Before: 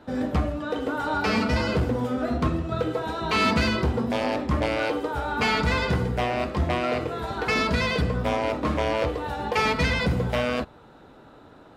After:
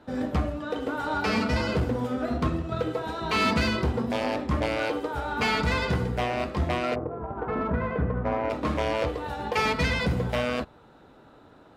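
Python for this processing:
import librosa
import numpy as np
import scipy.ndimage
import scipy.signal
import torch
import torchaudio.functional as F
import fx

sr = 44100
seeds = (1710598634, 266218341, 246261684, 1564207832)

y = fx.lowpass(x, sr, hz=fx.line((6.94, 1000.0), (8.49, 2100.0)), slope=24, at=(6.94, 8.49), fade=0.02)
y = fx.cheby_harmonics(y, sr, harmonics=(7,), levels_db=(-33,), full_scale_db=-14.5)
y = F.gain(torch.from_numpy(y), -2.0).numpy()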